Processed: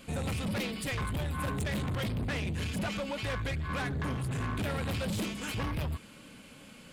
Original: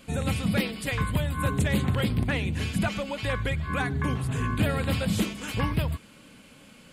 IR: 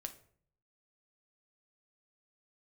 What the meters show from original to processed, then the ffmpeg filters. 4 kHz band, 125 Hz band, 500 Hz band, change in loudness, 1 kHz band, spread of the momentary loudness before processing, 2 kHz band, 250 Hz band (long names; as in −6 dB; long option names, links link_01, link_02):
−4.5 dB, −6.5 dB, −5.5 dB, −6.5 dB, −5.5 dB, 4 LU, −6.0 dB, −7.0 dB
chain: -af "asoftclip=type=tanh:threshold=-30dB"